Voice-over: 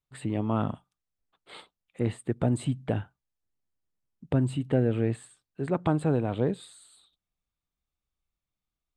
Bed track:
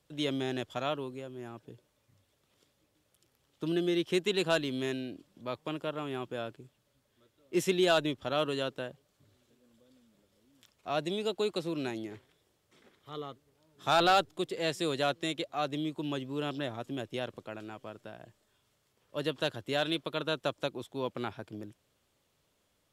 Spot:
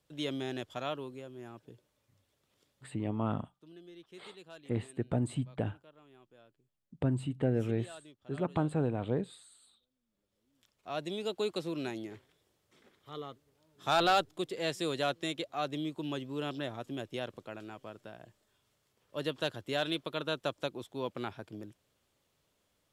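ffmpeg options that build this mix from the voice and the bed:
-filter_complex "[0:a]adelay=2700,volume=-5.5dB[a];[1:a]volume=17.5dB,afade=t=out:st=2.79:d=0.2:silence=0.105925,afade=t=in:st=10:d=1.44:silence=0.0891251[b];[a][b]amix=inputs=2:normalize=0"

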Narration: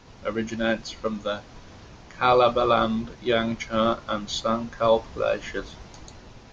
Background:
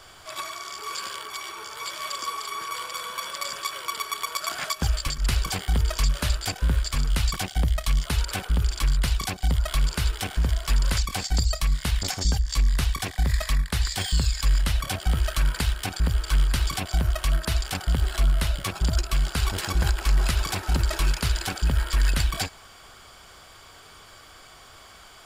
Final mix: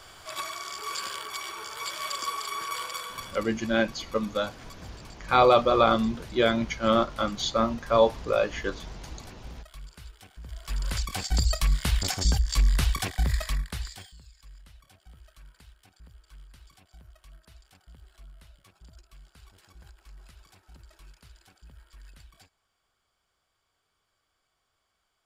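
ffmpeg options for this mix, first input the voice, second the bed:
-filter_complex "[0:a]adelay=3100,volume=0dB[a];[1:a]volume=20dB,afade=t=out:st=2.86:d=0.63:silence=0.0944061,afade=t=in:st=10.43:d=1.09:silence=0.0891251,afade=t=out:st=13.03:d=1.1:silence=0.0375837[b];[a][b]amix=inputs=2:normalize=0"

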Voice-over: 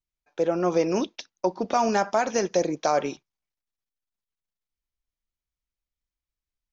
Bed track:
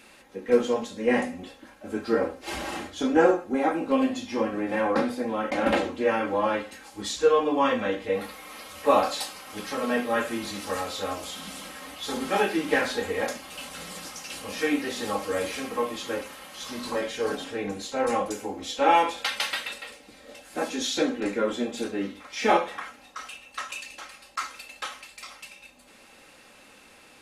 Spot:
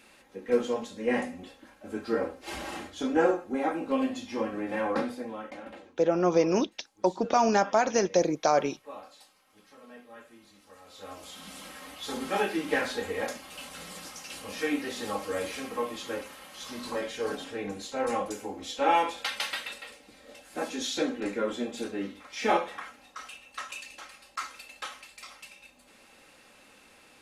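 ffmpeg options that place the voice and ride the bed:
-filter_complex "[0:a]adelay=5600,volume=-0.5dB[a];[1:a]volume=15dB,afade=t=out:st=4.96:d=0.74:silence=0.112202,afade=t=in:st=10.81:d=0.9:silence=0.105925[b];[a][b]amix=inputs=2:normalize=0"

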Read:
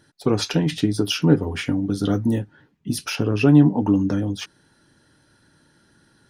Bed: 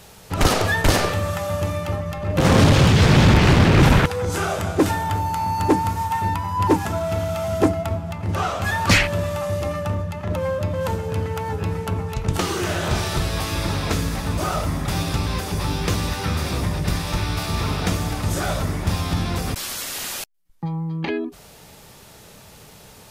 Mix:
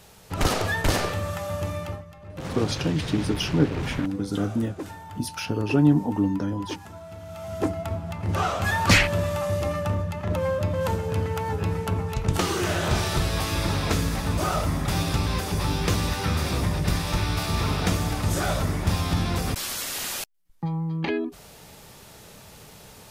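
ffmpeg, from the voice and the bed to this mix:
-filter_complex "[0:a]adelay=2300,volume=-5dB[a];[1:a]volume=10.5dB,afade=t=out:st=1.83:d=0.23:silence=0.251189,afade=t=in:st=7.2:d=1.19:silence=0.158489[b];[a][b]amix=inputs=2:normalize=0"

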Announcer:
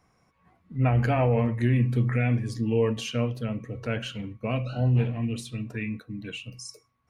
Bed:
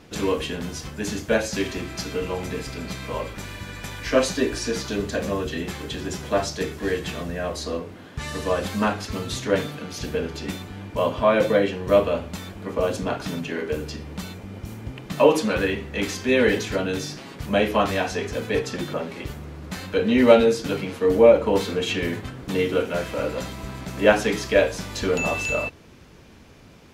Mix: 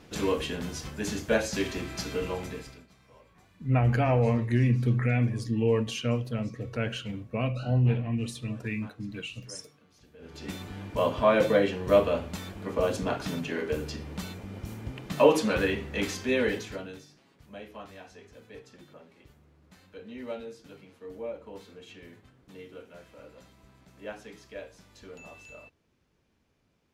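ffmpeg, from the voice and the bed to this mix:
-filter_complex "[0:a]adelay=2900,volume=-1dB[a];[1:a]volume=20.5dB,afade=t=out:st=2.27:d=0.6:silence=0.0630957,afade=t=in:st=10.18:d=0.5:silence=0.0595662,afade=t=out:st=15.94:d=1.12:silence=0.1[b];[a][b]amix=inputs=2:normalize=0"

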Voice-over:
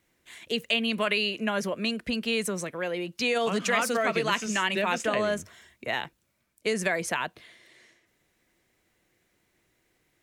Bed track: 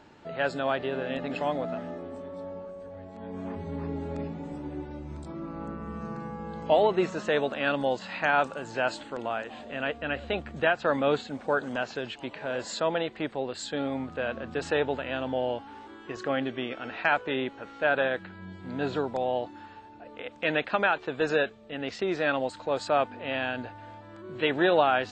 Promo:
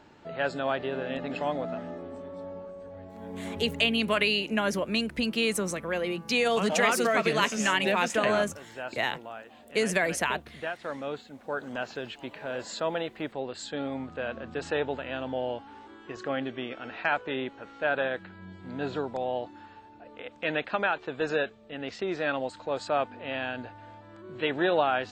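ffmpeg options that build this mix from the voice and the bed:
-filter_complex "[0:a]adelay=3100,volume=1dB[a];[1:a]volume=6.5dB,afade=t=out:st=3.62:d=0.3:silence=0.354813,afade=t=in:st=11.37:d=0.46:silence=0.421697[b];[a][b]amix=inputs=2:normalize=0"

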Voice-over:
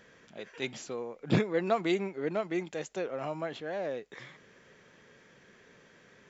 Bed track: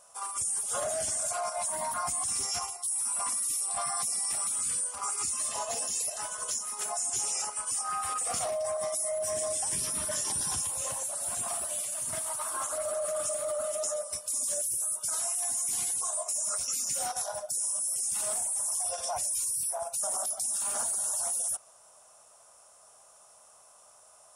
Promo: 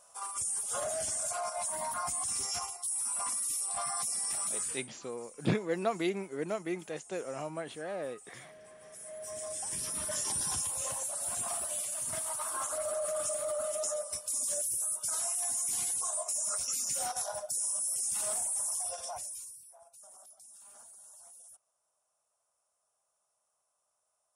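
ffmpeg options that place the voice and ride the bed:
-filter_complex "[0:a]adelay=4150,volume=-3dB[a];[1:a]volume=18dB,afade=t=out:st=4.6:d=0.28:silence=0.1,afade=t=in:st=8.84:d=1.45:silence=0.0891251,afade=t=out:st=18.59:d=1.03:silence=0.0891251[b];[a][b]amix=inputs=2:normalize=0"

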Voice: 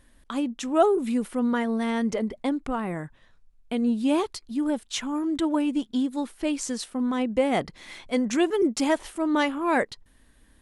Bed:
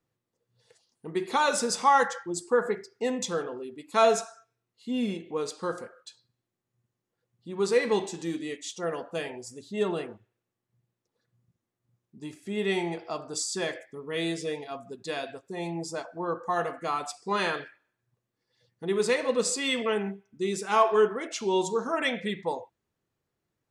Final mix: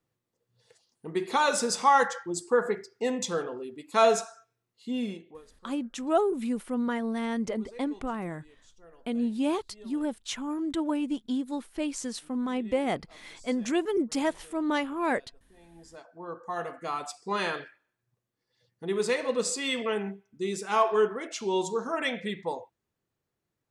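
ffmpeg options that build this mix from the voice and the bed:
-filter_complex "[0:a]adelay=5350,volume=-4.5dB[a];[1:a]volume=21.5dB,afade=t=out:st=4.85:d=0.57:silence=0.0668344,afade=t=in:st=15.68:d=1.41:silence=0.0841395[b];[a][b]amix=inputs=2:normalize=0"

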